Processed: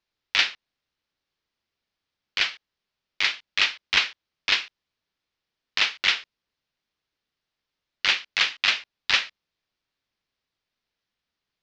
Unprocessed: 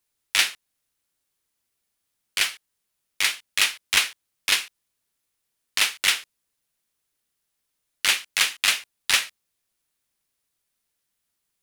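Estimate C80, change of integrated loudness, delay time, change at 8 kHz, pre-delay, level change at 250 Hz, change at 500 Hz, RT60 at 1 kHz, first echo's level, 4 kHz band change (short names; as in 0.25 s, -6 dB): none, -1.0 dB, none, -13.0 dB, none, 0.0 dB, 0.0 dB, none, none, -0.5 dB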